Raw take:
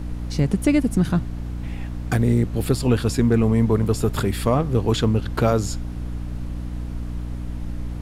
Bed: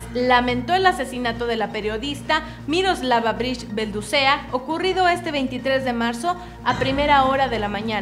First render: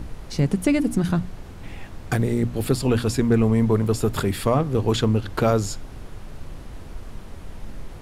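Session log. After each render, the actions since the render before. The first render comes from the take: notches 60/120/180/240/300 Hz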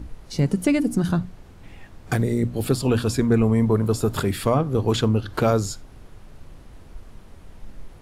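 noise print and reduce 7 dB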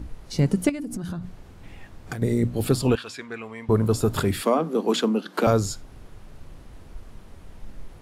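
0.69–2.22 compressor 16:1, threshold -27 dBFS; 2.95–3.69 band-pass 2400 Hz, Q 1.1; 4.42–5.47 steep high-pass 170 Hz 96 dB/oct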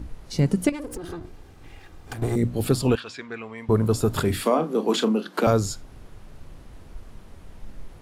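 0.72–2.36 minimum comb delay 2.5 ms; 3–3.58 LPF 6300 Hz; 4.22–5.29 doubler 33 ms -10 dB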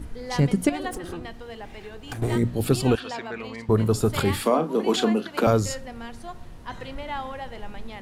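add bed -16.5 dB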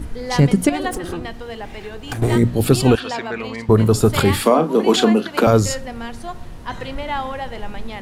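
gain +7.5 dB; limiter -3 dBFS, peak gain reduction 3 dB

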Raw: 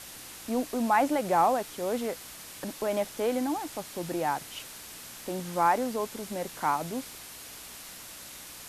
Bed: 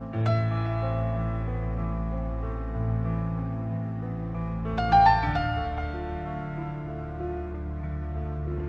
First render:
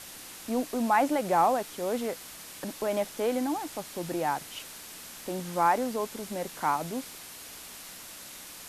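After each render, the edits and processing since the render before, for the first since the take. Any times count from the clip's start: de-hum 60 Hz, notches 2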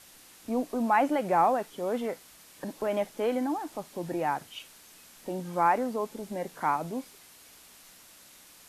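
noise print and reduce 9 dB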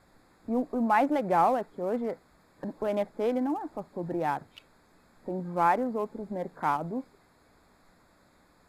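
Wiener smoothing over 15 samples; low shelf 150 Hz +5 dB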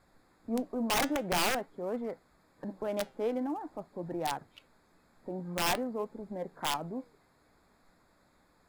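wrapped overs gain 18.5 dB; flange 0.48 Hz, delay 0.7 ms, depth 7 ms, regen +87%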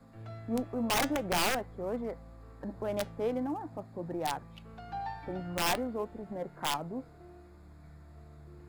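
add bed -20.5 dB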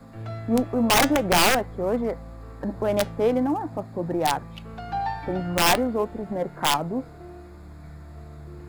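gain +10.5 dB

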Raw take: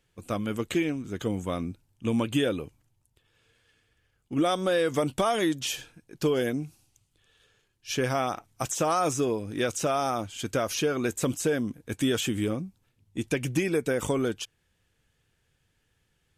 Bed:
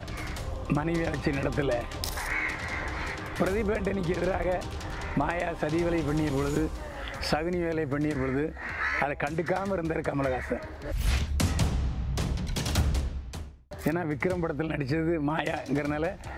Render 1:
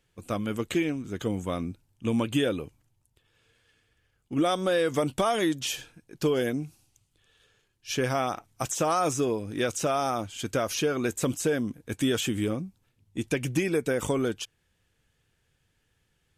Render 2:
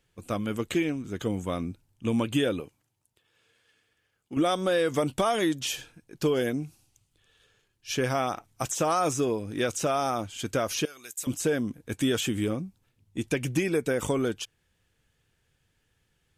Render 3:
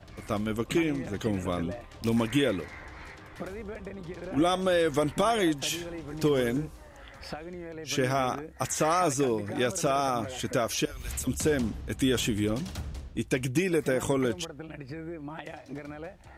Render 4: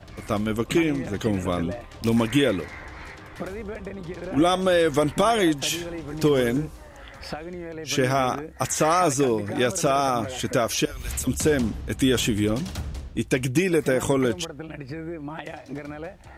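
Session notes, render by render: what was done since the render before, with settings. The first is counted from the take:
nothing audible
2.6–4.37 HPF 260 Hz 6 dB/oct; 10.85–11.27 pre-emphasis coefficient 0.97
add bed -11.5 dB
gain +5 dB

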